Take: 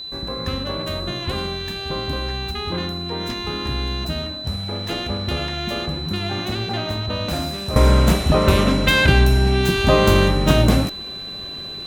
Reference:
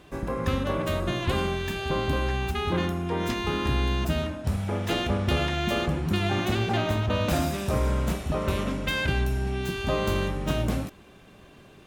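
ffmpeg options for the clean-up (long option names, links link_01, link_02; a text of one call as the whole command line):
ffmpeg -i in.wav -af "bandreject=frequency=4000:width=30,agate=range=-21dB:threshold=-23dB,asetnsamples=nb_out_samples=441:pad=0,asendcmd='7.76 volume volume -11.5dB',volume=0dB" out.wav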